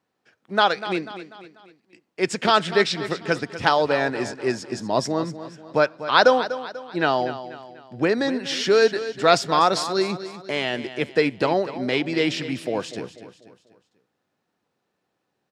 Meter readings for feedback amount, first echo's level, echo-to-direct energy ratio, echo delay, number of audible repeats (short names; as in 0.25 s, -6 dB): 44%, -13.0 dB, -12.0 dB, 0.245 s, 4